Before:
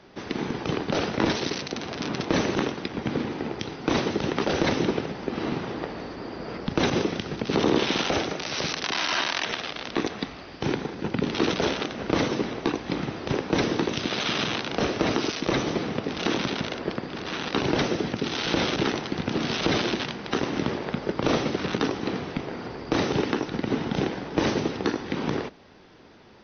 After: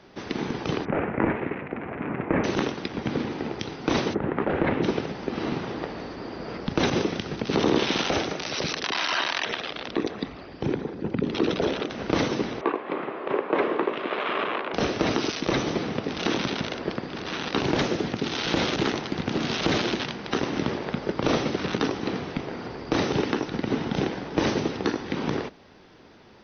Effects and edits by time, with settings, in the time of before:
0.85–2.44 steep low-pass 2400 Hz 48 dB/oct
4.13–4.82 LPF 1800 Hz -> 2600 Hz 24 dB/oct
8.49–11.9 formant sharpening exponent 1.5
12.61–14.74 speaker cabinet 360–2600 Hz, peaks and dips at 400 Hz +6 dB, 590 Hz +5 dB, 1100 Hz +8 dB
17.6–20.02 Doppler distortion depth 0.21 ms

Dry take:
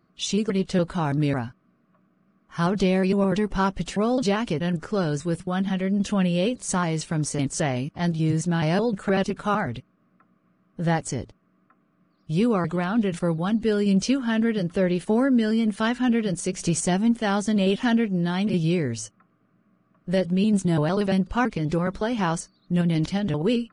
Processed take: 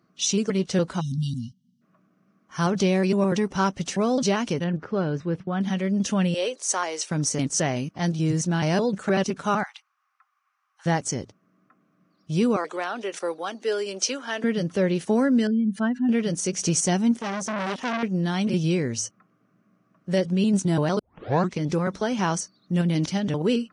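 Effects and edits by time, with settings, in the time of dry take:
1–1.82 spectral delete 270–2800 Hz
4.64–5.61 air absorption 340 m
6.34–7.11 HPF 400 Hz 24 dB/oct
9.63–10.86 Chebyshev high-pass 800 Hz, order 6
12.56–14.44 HPF 380 Hz 24 dB/oct
15.47–16.09 spectral contrast raised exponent 1.9
17.17–18.03 core saturation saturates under 1600 Hz
20.99 tape start 0.58 s
whole clip: HPF 110 Hz; bell 5900 Hz +9.5 dB 0.37 oct

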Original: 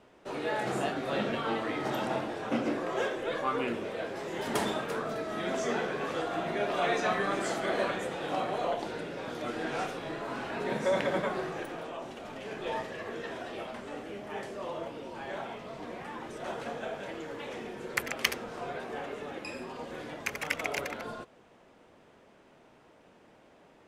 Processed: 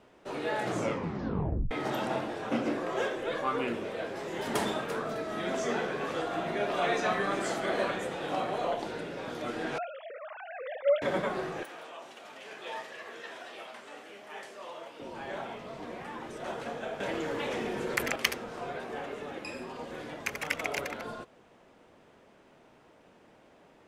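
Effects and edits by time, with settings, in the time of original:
0.65 tape stop 1.06 s
9.78–11.02 sine-wave speech
11.63–15 HPF 1100 Hz 6 dB/oct
17–18.16 fast leveller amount 50%

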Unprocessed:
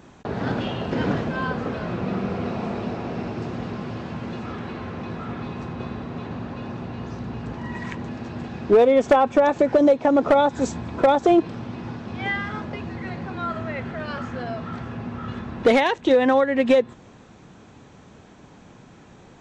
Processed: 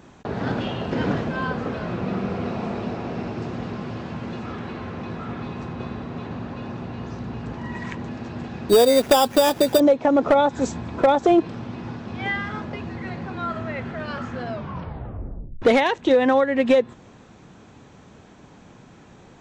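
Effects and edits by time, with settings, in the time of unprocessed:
8.69–9.8 sample-rate reducer 4200 Hz
14.5 tape stop 1.12 s

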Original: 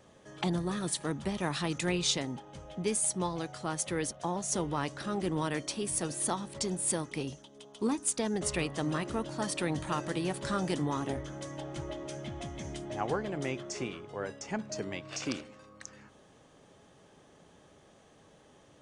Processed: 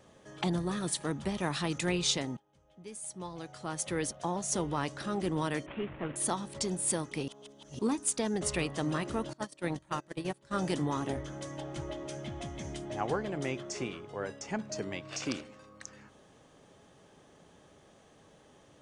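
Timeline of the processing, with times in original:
2.37–3.96 fade in quadratic, from -21.5 dB
5.66–6.16 CVSD 16 kbps
7.28–7.79 reverse
9.33–10.57 gate -32 dBFS, range -24 dB

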